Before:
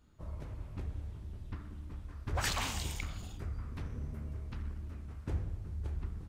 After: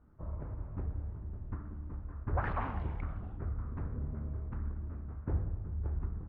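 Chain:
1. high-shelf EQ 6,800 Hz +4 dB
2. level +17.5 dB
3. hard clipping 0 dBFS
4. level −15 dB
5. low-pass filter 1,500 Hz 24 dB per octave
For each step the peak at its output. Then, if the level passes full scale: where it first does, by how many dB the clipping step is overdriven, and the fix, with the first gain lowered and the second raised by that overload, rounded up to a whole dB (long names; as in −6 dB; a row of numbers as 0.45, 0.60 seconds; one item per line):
−20.0, −2.5, −2.5, −17.5, −21.0 dBFS
no step passes full scale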